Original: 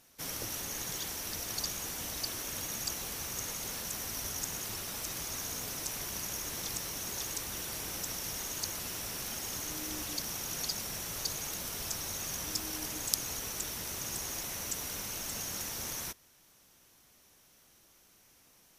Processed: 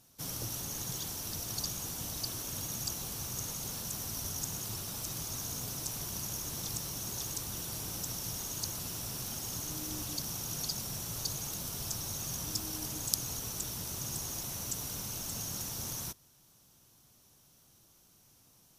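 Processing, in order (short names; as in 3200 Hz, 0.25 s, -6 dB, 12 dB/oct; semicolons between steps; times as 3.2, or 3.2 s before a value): graphic EQ 125/500/2000 Hz +8/-3/-9 dB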